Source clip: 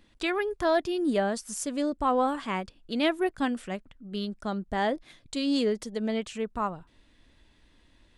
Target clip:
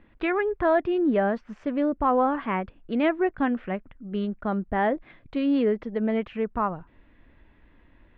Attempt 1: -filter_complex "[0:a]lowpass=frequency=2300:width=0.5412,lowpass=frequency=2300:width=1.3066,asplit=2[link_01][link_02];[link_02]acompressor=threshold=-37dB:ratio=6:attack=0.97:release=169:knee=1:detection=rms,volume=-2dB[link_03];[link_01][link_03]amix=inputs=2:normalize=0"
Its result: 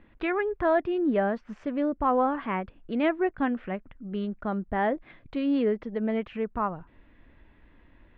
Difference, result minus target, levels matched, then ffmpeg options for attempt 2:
downward compressor: peak gain reduction +10 dB
-filter_complex "[0:a]lowpass=frequency=2300:width=0.5412,lowpass=frequency=2300:width=1.3066,asplit=2[link_01][link_02];[link_02]acompressor=threshold=-25dB:ratio=6:attack=0.97:release=169:knee=1:detection=rms,volume=-2dB[link_03];[link_01][link_03]amix=inputs=2:normalize=0"

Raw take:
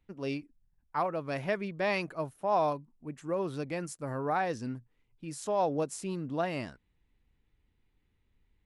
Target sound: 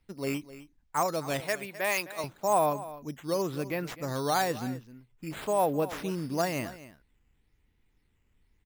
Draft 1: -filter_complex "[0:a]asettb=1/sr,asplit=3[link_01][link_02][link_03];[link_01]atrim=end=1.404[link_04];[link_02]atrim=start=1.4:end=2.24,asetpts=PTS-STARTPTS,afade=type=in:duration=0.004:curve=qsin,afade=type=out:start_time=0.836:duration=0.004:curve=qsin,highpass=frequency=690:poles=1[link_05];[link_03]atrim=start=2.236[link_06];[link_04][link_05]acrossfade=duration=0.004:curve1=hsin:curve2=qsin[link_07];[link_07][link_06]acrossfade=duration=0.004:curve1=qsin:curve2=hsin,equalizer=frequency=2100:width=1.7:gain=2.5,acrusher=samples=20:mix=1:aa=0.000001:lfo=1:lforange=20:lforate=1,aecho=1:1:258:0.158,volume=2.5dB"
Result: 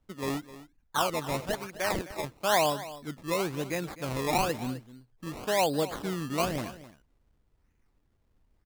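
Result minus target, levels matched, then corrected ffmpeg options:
sample-and-hold swept by an LFO: distortion +11 dB
-filter_complex "[0:a]asettb=1/sr,asplit=3[link_01][link_02][link_03];[link_01]atrim=end=1.404[link_04];[link_02]atrim=start=1.4:end=2.24,asetpts=PTS-STARTPTS,afade=type=in:duration=0.004:curve=qsin,afade=type=out:start_time=0.836:duration=0.004:curve=qsin,highpass=frequency=690:poles=1[link_05];[link_03]atrim=start=2.236[link_06];[link_04][link_05]acrossfade=duration=0.004:curve1=hsin:curve2=qsin[link_07];[link_07][link_06]acrossfade=duration=0.004:curve1=qsin:curve2=hsin,equalizer=frequency=2100:width=1.7:gain=2.5,acrusher=samples=6:mix=1:aa=0.000001:lfo=1:lforange=6:lforate=1,aecho=1:1:258:0.158,volume=2.5dB"

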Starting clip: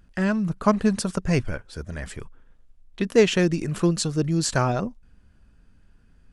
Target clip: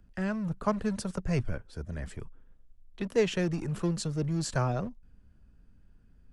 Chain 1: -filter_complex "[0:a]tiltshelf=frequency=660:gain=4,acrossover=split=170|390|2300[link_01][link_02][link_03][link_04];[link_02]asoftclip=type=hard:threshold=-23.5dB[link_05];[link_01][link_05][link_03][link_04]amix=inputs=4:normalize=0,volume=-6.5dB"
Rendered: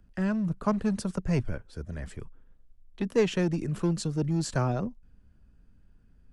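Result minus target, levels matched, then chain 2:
hard clipping: distortion −6 dB
-filter_complex "[0:a]tiltshelf=frequency=660:gain=4,acrossover=split=170|390|2300[link_01][link_02][link_03][link_04];[link_02]asoftclip=type=hard:threshold=-35dB[link_05];[link_01][link_05][link_03][link_04]amix=inputs=4:normalize=0,volume=-6.5dB"

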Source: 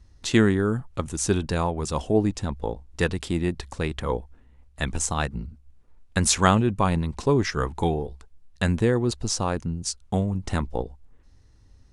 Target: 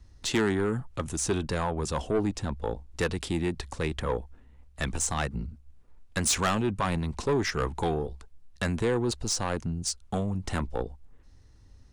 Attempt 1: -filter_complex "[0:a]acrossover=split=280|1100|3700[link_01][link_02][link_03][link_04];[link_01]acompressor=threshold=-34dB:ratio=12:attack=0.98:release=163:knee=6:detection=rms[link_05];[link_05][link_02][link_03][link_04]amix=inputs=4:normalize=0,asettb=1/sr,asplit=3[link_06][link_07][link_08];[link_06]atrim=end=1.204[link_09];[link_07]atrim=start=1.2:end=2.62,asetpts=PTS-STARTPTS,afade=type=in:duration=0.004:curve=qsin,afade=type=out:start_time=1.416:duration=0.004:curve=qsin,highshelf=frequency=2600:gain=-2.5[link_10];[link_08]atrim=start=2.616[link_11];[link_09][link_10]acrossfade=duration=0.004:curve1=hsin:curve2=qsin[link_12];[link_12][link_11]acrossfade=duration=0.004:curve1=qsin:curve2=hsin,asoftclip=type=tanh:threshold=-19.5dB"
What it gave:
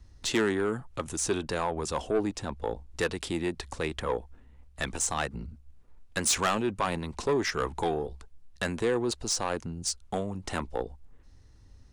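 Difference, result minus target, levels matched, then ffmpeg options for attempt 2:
downward compressor: peak gain reduction +9.5 dB
-filter_complex "[0:a]acrossover=split=280|1100|3700[link_01][link_02][link_03][link_04];[link_01]acompressor=threshold=-23.5dB:ratio=12:attack=0.98:release=163:knee=6:detection=rms[link_05];[link_05][link_02][link_03][link_04]amix=inputs=4:normalize=0,asettb=1/sr,asplit=3[link_06][link_07][link_08];[link_06]atrim=end=1.204[link_09];[link_07]atrim=start=1.2:end=2.62,asetpts=PTS-STARTPTS,afade=type=in:duration=0.004:curve=qsin,afade=type=out:start_time=1.416:duration=0.004:curve=qsin,highshelf=frequency=2600:gain=-2.5[link_10];[link_08]atrim=start=2.616[link_11];[link_09][link_10]acrossfade=duration=0.004:curve1=hsin:curve2=qsin[link_12];[link_12][link_11]acrossfade=duration=0.004:curve1=qsin:curve2=hsin,asoftclip=type=tanh:threshold=-19.5dB"

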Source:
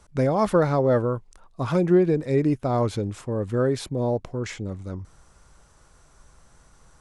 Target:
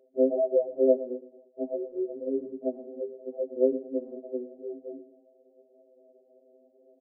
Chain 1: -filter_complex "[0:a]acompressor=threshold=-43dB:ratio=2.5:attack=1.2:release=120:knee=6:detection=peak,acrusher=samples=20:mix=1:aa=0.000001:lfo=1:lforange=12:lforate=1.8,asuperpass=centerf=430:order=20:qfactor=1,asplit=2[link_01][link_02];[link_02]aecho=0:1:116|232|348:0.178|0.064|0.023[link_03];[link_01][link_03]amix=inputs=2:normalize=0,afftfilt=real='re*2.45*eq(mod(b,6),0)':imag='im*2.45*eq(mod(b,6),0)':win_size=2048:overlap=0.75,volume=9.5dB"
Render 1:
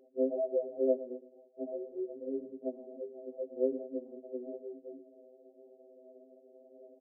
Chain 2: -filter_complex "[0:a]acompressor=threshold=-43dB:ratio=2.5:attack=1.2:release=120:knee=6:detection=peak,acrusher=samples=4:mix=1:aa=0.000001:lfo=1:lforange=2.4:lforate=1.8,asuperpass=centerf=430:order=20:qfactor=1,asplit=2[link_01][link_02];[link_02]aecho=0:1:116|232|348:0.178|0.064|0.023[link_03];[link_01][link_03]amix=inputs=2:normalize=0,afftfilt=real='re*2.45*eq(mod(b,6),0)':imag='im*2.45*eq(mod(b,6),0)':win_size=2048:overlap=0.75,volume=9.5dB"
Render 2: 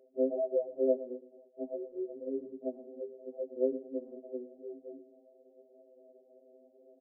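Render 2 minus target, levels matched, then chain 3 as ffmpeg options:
downward compressor: peak gain reduction +6.5 dB
-filter_complex "[0:a]acompressor=threshold=-32dB:ratio=2.5:attack=1.2:release=120:knee=6:detection=peak,acrusher=samples=4:mix=1:aa=0.000001:lfo=1:lforange=2.4:lforate=1.8,asuperpass=centerf=430:order=20:qfactor=1,asplit=2[link_01][link_02];[link_02]aecho=0:1:116|232|348:0.178|0.064|0.023[link_03];[link_01][link_03]amix=inputs=2:normalize=0,afftfilt=real='re*2.45*eq(mod(b,6),0)':imag='im*2.45*eq(mod(b,6),0)':win_size=2048:overlap=0.75,volume=9.5dB"

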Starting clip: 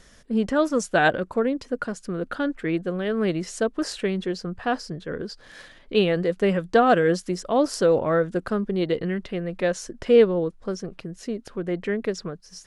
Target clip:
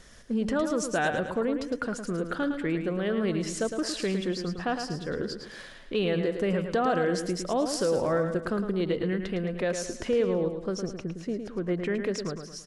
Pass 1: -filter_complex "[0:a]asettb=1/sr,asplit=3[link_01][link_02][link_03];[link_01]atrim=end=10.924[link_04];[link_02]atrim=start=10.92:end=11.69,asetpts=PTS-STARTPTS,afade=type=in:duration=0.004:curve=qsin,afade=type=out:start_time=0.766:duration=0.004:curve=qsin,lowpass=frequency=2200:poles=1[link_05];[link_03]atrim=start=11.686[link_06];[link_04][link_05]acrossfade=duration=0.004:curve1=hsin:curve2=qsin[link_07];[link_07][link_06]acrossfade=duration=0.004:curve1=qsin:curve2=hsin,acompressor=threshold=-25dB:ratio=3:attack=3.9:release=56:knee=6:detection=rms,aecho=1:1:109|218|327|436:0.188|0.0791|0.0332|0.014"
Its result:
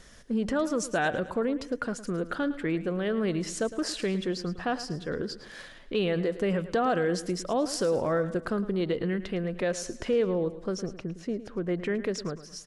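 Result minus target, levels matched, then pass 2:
echo-to-direct −7 dB
-filter_complex "[0:a]asettb=1/sr,asplit=3[link_01][link_02][link_03];[link_01]atrim=end=10.924[link_04];[link_02]atrim=start=10.92:end=11.69,asetpts=PTS-STARTPTS,afade=type=in:duration=0.004:curve=qsin,afade=type=out:start_time=0.766:duration=0.004:curve=qsin,lowpass=frequency=2200:poles=1[link_05];[link_03]atrim=start=11.686[link_06];[link_04][link_05]acrossfade=duration=0.004:curve1=hsin:curve2=qsin[link_07];[link_07][link_06]acrossfade=duration=0.004:curve1=qsin:curve2=hsin,acompressor=threshold=-25dB:ratio=3:attack=3.9:release=56:knee=6:detection=rms,aecho=1:1:109|218|327|436|545:0.422|0.177|0.0744|0.0312|0.0131"

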